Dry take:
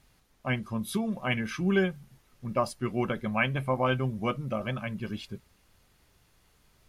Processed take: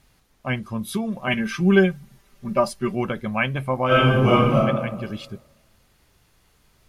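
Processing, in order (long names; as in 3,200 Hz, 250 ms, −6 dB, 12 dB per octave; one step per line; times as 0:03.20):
0:01.27–0:02.95: comb filter 5.1 ms, depth 88%
0:03.86–0:04.56: thrown reverb, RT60 1.3 s, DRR −9.5 dB
level +4 dB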